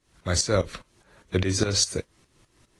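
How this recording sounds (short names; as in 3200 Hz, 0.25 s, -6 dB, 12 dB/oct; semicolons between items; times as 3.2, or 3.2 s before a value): tremolo saw up 4.9 Hz, depth 85%; AAC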